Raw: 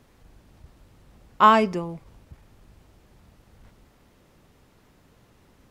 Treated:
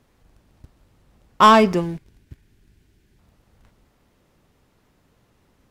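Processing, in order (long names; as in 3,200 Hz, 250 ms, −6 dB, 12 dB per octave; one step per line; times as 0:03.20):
leveller curve on the samples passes 2
gain on a spectral selection 0:01.81–0:03.19, 440–1,400 Hz −10 dB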